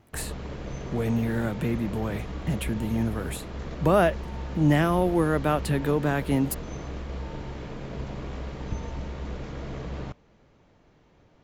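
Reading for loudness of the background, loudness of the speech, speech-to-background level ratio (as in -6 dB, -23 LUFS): -36.5 LUFS, -26.0 LUFS, 10.5 dB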